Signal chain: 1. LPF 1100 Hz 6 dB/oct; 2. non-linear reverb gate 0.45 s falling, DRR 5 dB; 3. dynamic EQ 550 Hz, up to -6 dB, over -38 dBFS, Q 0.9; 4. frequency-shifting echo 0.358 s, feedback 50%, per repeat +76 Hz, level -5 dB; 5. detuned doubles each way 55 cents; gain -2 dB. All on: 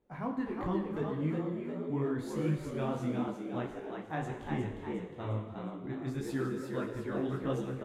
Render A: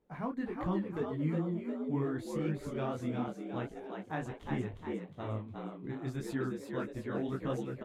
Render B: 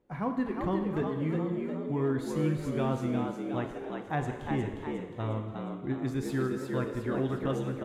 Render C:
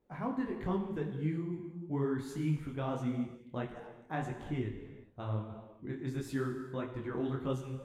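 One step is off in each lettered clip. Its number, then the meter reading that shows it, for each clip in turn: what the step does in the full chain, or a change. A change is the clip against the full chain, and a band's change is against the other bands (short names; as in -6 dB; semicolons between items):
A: 2, loudness change -1.5 LU; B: 5, loudness change +3.5 LU; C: 4, momentary loudness spread change +2 LU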